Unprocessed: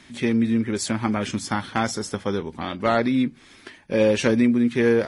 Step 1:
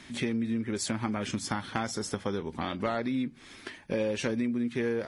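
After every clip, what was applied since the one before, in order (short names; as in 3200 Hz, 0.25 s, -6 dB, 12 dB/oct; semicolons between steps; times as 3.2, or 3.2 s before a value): compressor 4:1, threshold -29 dBFS, peak gain reduction 12 dB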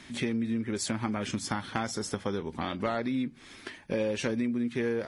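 nothing audible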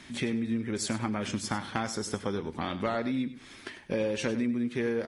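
feedback echo 99 ms, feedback 18%, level -13.5 dB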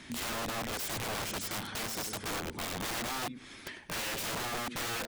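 wrapped overs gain 31 dB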